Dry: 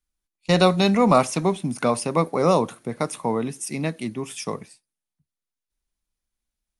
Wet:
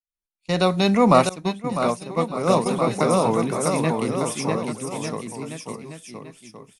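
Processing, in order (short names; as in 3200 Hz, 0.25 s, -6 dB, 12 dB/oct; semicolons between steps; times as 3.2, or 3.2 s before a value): opening faded in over 1.04 s; bouncing-ball echo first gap 0.65 s, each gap 0.85×, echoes 5; 1.29–2.66 expander -12 dBFS; gain +1.5 dB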